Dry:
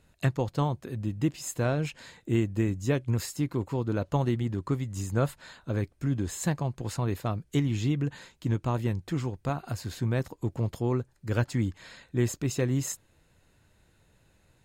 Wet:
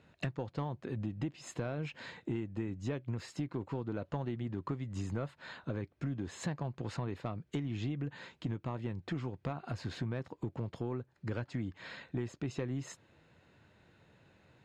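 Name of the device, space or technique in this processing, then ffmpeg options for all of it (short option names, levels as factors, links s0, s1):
AM radio: -af "highpass=110,lowpass=3500,acompressor=threshold=0.0158:ratio=6,asoftclip=type=tanh:threshold=0.0422,volume=1.41"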